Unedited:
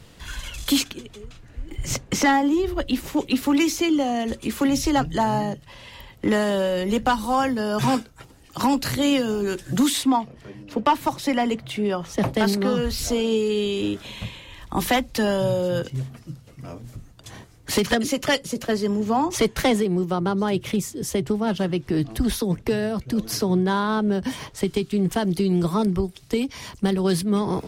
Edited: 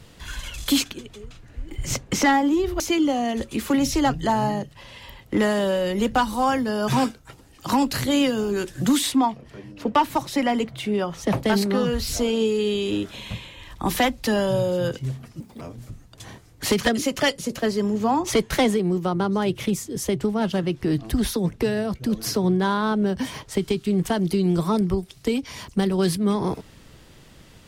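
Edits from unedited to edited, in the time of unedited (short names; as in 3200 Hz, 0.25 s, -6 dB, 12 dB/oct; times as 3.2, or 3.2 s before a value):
2.8–3.71 cut
16.31–16.67 speed 171%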